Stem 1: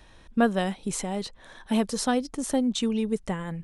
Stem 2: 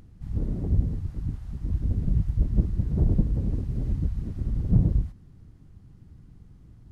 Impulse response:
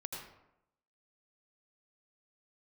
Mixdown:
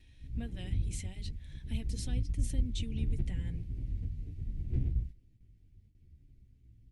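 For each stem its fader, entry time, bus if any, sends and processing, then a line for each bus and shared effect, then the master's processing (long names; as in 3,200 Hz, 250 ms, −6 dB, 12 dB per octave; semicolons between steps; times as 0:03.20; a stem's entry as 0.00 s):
−4.5 dB, 0.00 s, no send, downward compressor 3 to 1, threshold −27 dBFS, peak gain reduction 8.5 dB; notch comb filter 200 Hz
−4.5 dB, 0.00 s, no send, lower of the sound and its delayed copy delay 2.6 ms; barber-pole flanger 11.3 ms −0.65 Hz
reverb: not used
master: noise gate with hold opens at −52 dBFS; drawn EQ curve 120 Hz 0 dB, 1,200 Hz −25 dB, 2,200 Hz −1 dB, 5,500 Hz −6 dB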